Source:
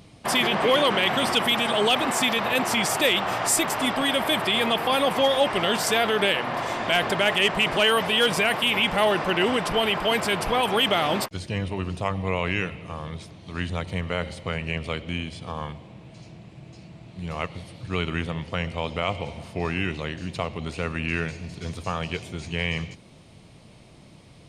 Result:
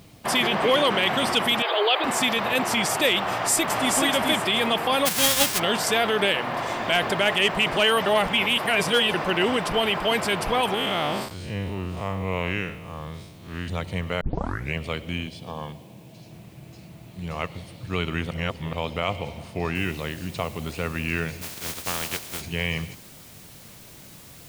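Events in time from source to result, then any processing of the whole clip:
1.62–2.04 s: brick-wall FIR band-pass 300–5000 Hz
3.25–3.92 s: echo throw 430 ms, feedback 20%, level -3 dB
5.05–5.58 s: formants flattened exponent 0.1
8.06–9.14 s: reverse
10.74–13.68 s: spectral blur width 126 ms
14.21 s: tape start 0.53 s
15.27–16.31 s: cabinet simulation 110–9200 Hz, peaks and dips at 1.3 kHz -10 dB, 2 kHz -6 dB, 7.3 kHz -5 dB
18.31–18.73 s: reverse
19.75 s: noise floor step -61 dB -48 dB
21.41–22.40 s: spectral contrast reduction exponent 0.36

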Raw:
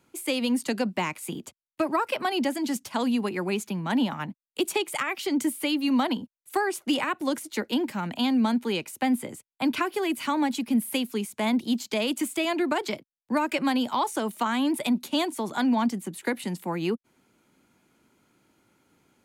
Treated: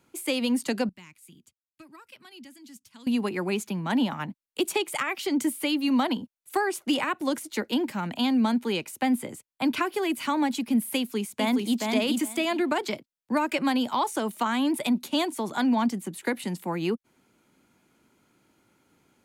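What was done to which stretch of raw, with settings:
0.89–3.07 s: amplifier tone stack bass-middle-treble 6-0-2
10.97–11.79 s: echo throw 420 ms, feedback 15%, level -3 dB

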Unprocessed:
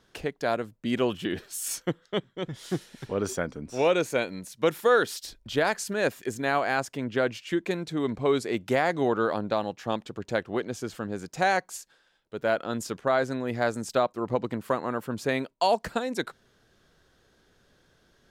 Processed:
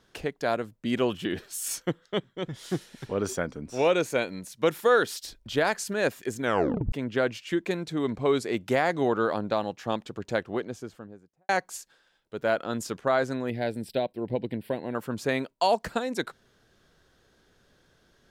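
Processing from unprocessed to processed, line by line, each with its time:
6.41 s: tape stop 0.51 s
10.32–11.49 s: studio fade out
13.50–14.95 s: static phaser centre 2.9 kHz, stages 4

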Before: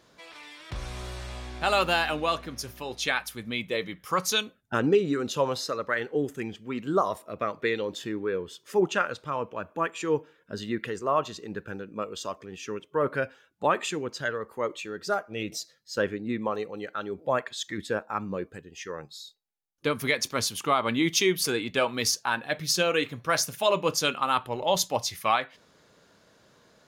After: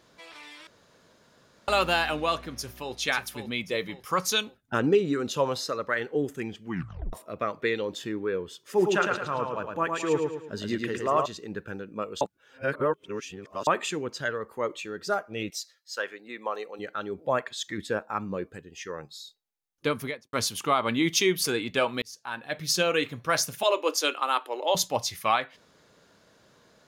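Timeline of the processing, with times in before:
0.67–1.68 s: room tone
2.52–2.96 s: echo throw 540 ms, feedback 40%, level -7.5 dB
6.64 s: tape stop 0.49 s
8.62–11.26 s: feedback delay 109 ms, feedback 41%, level -4 dB
12.21–13.67 s: reverse
15.49–16.78 s: high-pass 1.2 kHz -> 420 Hz
19.89–20.33 s: studio fade out
22.02–22.74 s: fade in
23.63–24.75 s: Chebyshev high-pass 290 Hz, order 5

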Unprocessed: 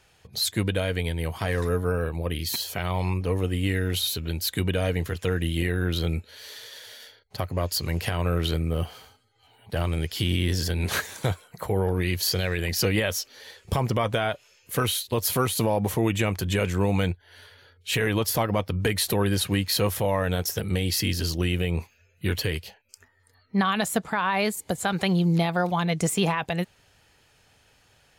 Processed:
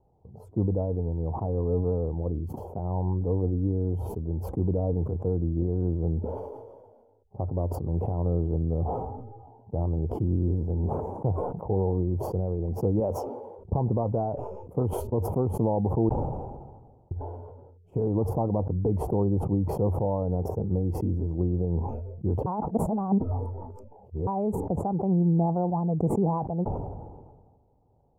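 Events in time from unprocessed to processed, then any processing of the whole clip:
13.00–13.59 s: high-pass 230 Hz 6 dB/octave
16.09–17.11 s: room tone
22.46–24.27 s: reverse
whole clip: elliptic low-pass 860 Hz, stop band 50 dB; peaking EQ 640 Hz -3.5 dB 0.77 oct; decay stretcher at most 38 dB/s

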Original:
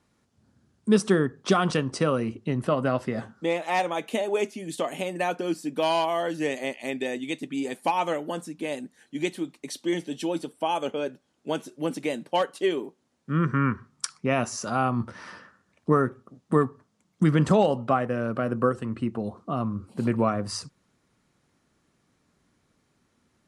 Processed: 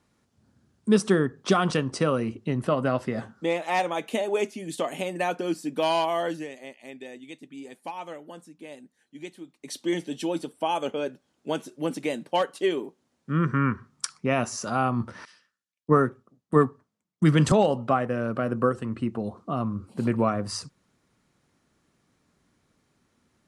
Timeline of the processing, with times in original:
6.32–9.73 s: dip -11.5 dB, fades 0.14 s
15.25–17.52 s: three bands expanded up and down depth 100%

